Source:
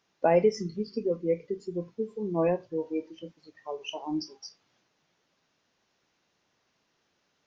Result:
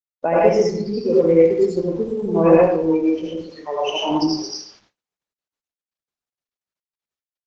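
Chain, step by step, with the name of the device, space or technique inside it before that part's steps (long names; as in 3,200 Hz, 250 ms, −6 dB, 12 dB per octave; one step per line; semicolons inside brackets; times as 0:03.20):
speakerphone in a meeting room (convolution reverb RT60 0.65 s, pre-delay 72 ms, DRR −6 dB; far-end echo of a speakerphone 120 ms, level −26 dB; automatic gain control gain up to 7.5 dB; noise gate −54 dBFS, range −46 dB; level +1.5 dB; Opus 12 kbit/s 48,000 Hz)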